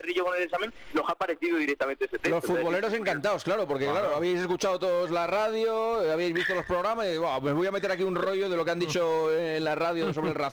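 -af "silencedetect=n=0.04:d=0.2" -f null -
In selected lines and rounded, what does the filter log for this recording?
silence_start: 0.67
silence_end: 0.95 | silence_duration: 0.28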